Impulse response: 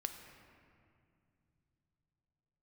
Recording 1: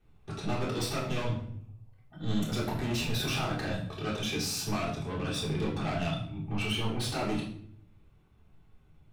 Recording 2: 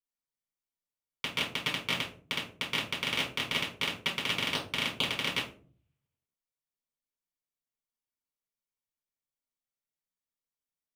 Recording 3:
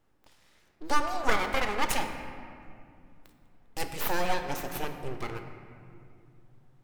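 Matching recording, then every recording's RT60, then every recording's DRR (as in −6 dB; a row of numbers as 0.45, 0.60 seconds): 3; 0.60, 0.45, 2.3 seconds; −5.5, −5.5, 5.5 decibels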